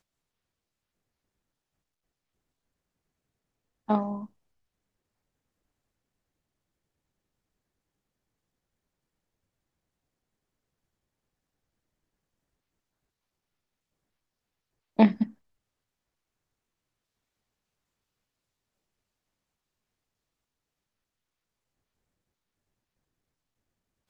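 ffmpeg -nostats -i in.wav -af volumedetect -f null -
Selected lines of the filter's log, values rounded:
mean_volume: -38.8 dB
max_volume: -5.5 dB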